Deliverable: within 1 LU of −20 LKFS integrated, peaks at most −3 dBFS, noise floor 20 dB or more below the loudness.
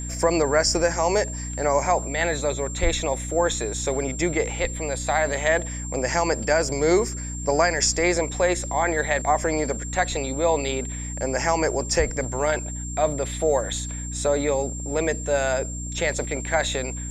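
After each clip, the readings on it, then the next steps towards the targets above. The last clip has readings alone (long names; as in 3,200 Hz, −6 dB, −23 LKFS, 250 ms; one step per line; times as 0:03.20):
mains hum 60 Hz; hum harmonics up to 300 Hz; level of the hum −30 dBFS; interfering tone 7,400 Hz; level of the tone −34 dBFS; integrated loudness −23.5 LKFS; sample peak −6.5 dBFS; target loudness −20.0 LKFS
→ mains-hum notches 60/120/180/240/300 Hz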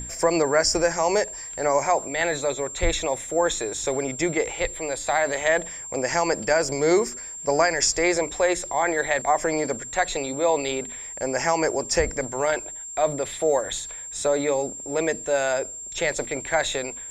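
mains hum none found; interfering tone 7,400 Hz; level of the tone −34 dBFS
→ notch filter 7,400 Hz, Q 30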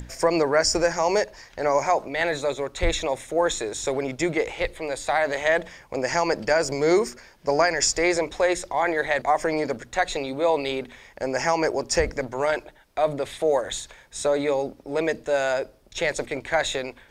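interfering tone none found; integrated loudness −24.5 LKFS; sample peak −6.5 dBFS; target loudness −20.0 LKFS
→ level +4.5 dB
brickwall limiter −3 dBFS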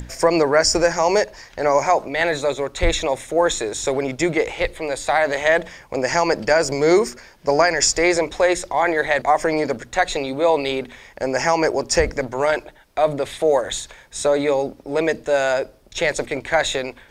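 integrated loudness −20.0 LKFS; sample peak −3.0 dBFS; background noise floor −49 dBFS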